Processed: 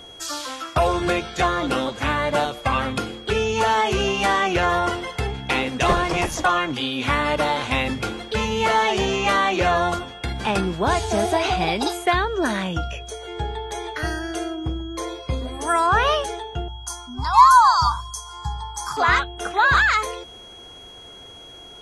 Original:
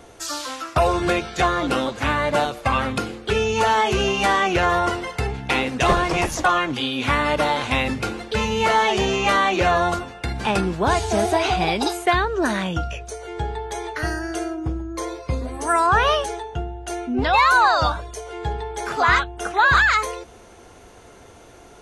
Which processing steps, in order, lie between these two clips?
16.68–18.97 s: FFT filter 140 Hz 0 dB, 560 Hz -28 dB, 1 kHz +10 dB, 1.7 kHz -10 dB, 3.2 kHz -21 dB, 4.7 kHz +7 dB; whistle 3.3 kHz -40 dBFS; trim -1 dB

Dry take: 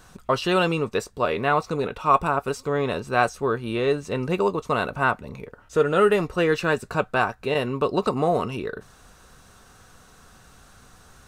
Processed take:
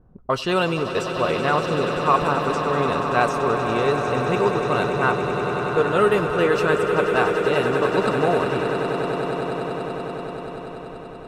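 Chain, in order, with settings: level-controlled noise filter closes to 380 Hz, open at -19.5 dBFS; on a send: echo with a slow build-up 96 ms, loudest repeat 8, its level -11.5 dB

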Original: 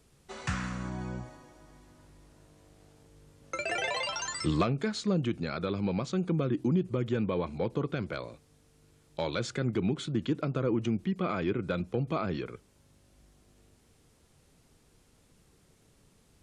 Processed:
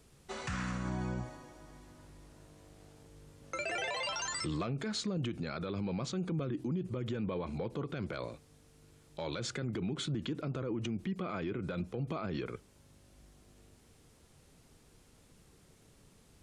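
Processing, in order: peak limiter -29.5 dBFS, peak gain reduction 12 dB; trim +1.5 dB

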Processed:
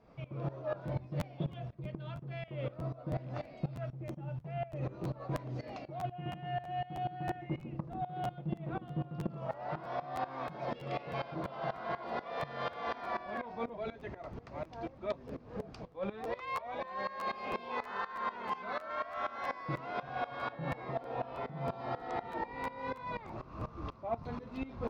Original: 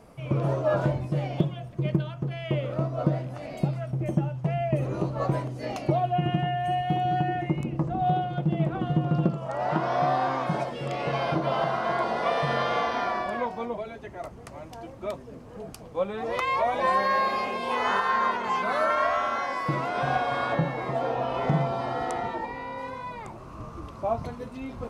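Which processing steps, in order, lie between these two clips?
band-stop 3 kHz, Q 18; reverse; compression 12:1, threshold -32 dBFS, peak gain reduction 16 dB; reverse; low-pass 4.9 kHz 24 dB/octave; Chebyshev shaper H 5 -27 dB, 8 -42 dB, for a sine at -21.5 dBFS; crackling interface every 0.32 s, samples 512, repeat, from 0.87 s; sawtooth tremolo in dB swelling 4.1 Hz, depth 18 dB; trim +2 dB

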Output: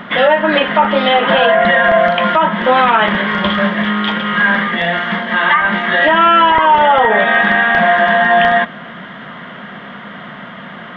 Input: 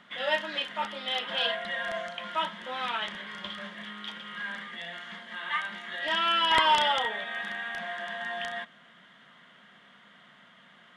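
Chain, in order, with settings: low-pass that closes with the level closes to 2.3 kHz, closed at -27 dBFS; compression, threshold -30 dBFS, peak gain reduction 10.5 dB; tape spacing loss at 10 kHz 39 dB; loudness maximiser +31.5 dB; trim -1 dB

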